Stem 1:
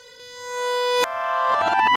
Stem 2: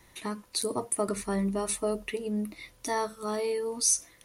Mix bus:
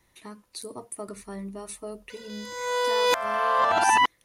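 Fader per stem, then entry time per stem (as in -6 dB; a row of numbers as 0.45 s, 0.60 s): -2.0 dB, -8.0 dB; 2.10 s, 0.00 s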